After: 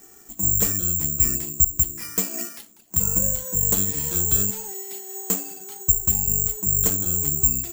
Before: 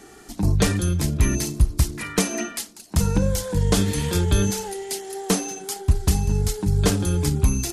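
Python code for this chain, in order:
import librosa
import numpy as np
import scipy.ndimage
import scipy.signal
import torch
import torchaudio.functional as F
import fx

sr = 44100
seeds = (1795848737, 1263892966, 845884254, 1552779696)

y = (np.kron(scipy.signal.resample_poly(x, 1, 6), np.eye(6)[0]) * 6)[:len(x)]
y = y * 10.0 ** (-9.5 / 20.0)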